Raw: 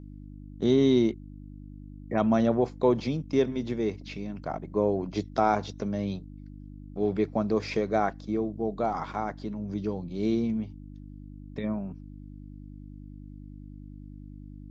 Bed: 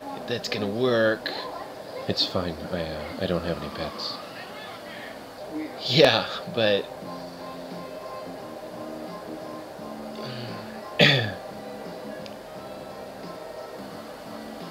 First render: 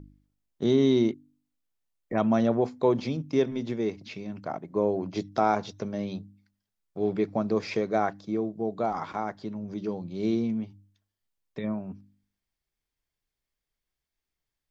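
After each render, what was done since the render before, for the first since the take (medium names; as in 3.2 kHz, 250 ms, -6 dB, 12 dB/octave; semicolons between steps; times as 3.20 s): de-hum 50 Hz, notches 6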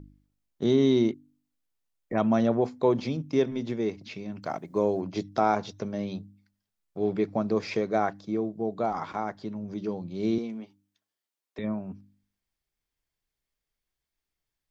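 4.42–5.00 s: treble shelf 2.4 kHz -> 3.5 kHz +12 dB; 10.38–11.59 s: high-pass 330 Hz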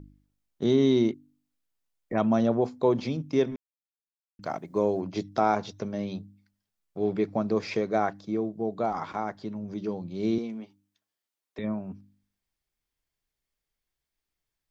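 2.25–2.92 s: peaking EQ 2 kHz -4.5 dB; 3.56–4.39 s: mute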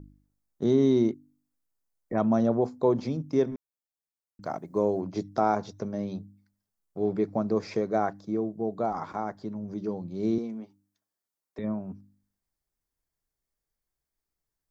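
peaking EQ 2.9 kHz -10.5 dB 1.2 oct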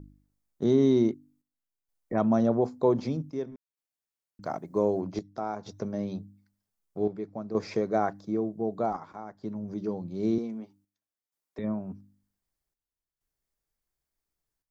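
square tremolo 0.53 Hz, depth 65%, duty 75%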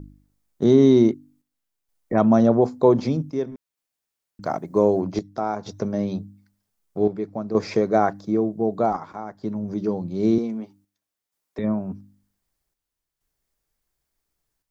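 trim +7.5 dB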